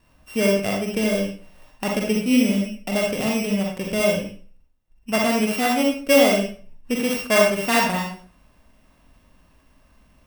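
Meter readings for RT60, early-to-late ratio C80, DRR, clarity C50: 0.40 s, 7.5 dB, -1.0 dB, 2.5 dB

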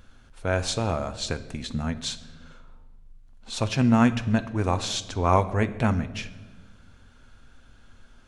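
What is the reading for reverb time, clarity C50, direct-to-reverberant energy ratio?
1.3 s, 15.0 dB, 9.5 dB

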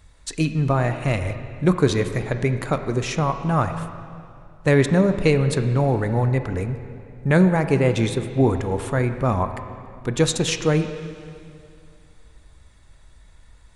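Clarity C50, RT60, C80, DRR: 9.0 dB, 2.5 s, 10.0 dB, 8.0 dB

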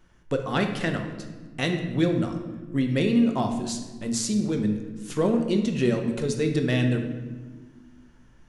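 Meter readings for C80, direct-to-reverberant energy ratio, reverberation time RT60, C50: 8.5 dB, 4.0 dB, 1.4 s, 6.5 dB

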